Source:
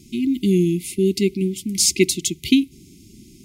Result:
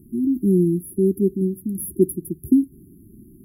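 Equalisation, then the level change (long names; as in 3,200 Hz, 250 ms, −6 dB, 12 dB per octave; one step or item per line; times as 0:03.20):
linear-phase brick-wall band-stop 440–10,000 Hz
0.0 dB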